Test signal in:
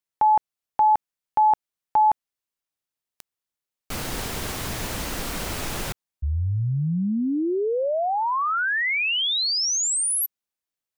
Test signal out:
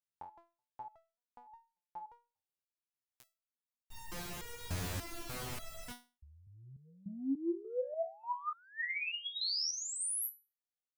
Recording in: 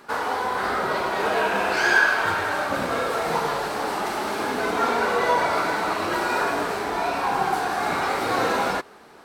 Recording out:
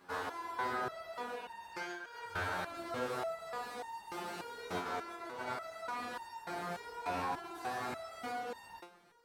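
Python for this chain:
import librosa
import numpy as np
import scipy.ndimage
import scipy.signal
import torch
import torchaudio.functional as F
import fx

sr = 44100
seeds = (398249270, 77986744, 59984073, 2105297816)

y = fx.peak_eq(x, sr, hz=98.0, db=7.0, octaves=1.3)
y = fx.over_compress(y, sr, threshold_db=-24.0, ratio=-1.0)
y = fx.resonator_held(y, sr, hz=3.4, low_hz=90.0, high_hz=920.0)
y = F.gain(torch.from_numpy(y), -4.0).numpy()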